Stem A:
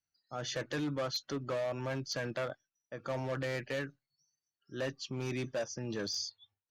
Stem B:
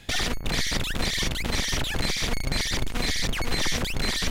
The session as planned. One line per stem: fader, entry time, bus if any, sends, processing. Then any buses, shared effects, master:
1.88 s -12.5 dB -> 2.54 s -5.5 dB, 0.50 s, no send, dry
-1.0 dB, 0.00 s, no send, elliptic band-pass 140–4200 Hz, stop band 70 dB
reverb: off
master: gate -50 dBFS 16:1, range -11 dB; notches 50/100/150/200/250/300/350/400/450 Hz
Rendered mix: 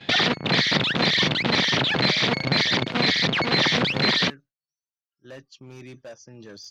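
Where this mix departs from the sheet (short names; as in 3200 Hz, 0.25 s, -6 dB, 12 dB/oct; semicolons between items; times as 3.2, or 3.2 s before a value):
stem B -1.0 dB -> +8.5 dB; master: missing notches 50/100/150/200/250/300/350/400/450 Hz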